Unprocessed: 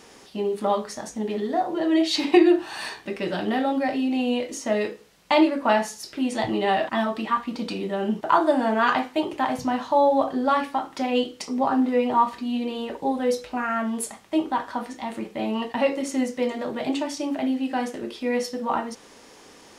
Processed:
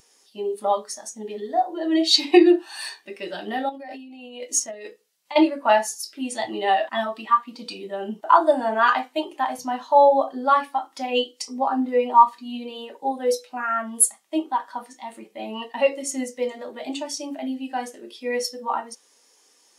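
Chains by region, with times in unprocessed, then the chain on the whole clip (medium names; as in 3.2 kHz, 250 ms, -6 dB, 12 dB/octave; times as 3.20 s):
3.69–5.36 s: transient shaper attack -12 dB, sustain -6 dB + compressor with a negative ratio -31 dBFS
whole clip: RIAA curve recording; spectral contrast expander 1.5:1; trim +1.5 dB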